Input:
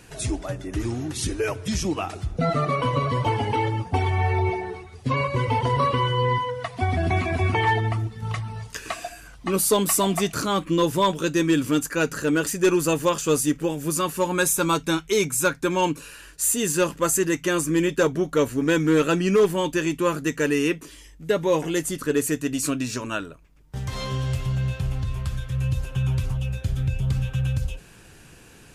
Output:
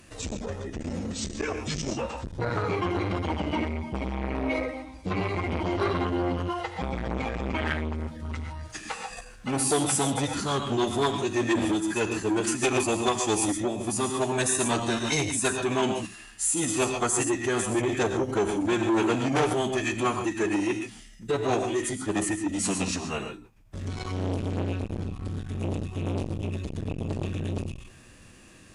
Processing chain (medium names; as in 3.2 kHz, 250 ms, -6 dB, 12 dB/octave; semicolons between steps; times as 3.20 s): gated-style reverb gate 160 ms rising, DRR 5 dB; formant-preserving pitch shift -6 st; transformer saturation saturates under 1 kHz; trim -2.5 dB